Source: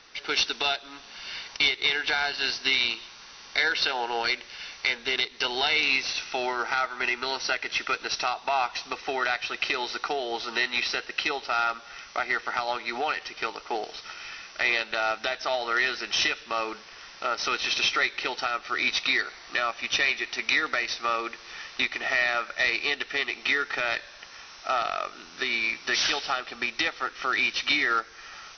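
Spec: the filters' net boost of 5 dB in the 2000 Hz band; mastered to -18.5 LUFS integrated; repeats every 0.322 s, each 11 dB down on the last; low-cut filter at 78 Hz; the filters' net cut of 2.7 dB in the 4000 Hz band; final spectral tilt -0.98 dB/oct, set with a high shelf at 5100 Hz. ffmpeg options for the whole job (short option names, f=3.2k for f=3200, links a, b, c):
-af "highpass=78,equalizer=f=2k:t=o:g=8,equalizer=f=4k:t=o:g=-4,highshelf=f=5.1k:g=-6,aecho=1:1:322|644|966:0.282|0.0789|0.0221,volume=4.5dB"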